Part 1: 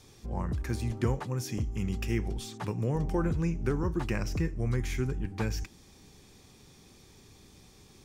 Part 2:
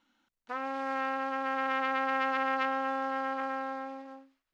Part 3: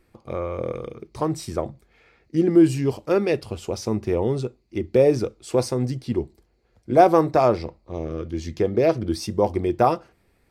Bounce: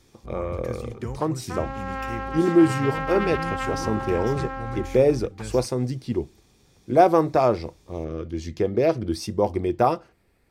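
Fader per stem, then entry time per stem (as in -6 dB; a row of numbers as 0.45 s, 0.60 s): -4.0 dB, +1.0 dB, -1.5 dB; 0.00 s, 1.00 s, 0.00 s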